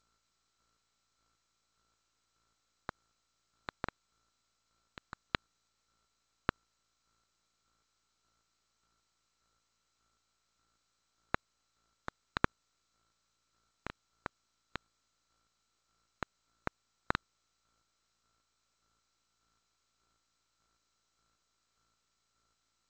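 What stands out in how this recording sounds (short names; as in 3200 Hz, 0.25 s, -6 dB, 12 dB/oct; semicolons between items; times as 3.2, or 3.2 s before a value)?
a buzz of ramps at a fixed pitch in blocks of 32 samples; chopped level 1.7 Hz, depth 60%, duty 30%; aliases and images of a low sample rate 2700 Hz, jitter 0%; G.722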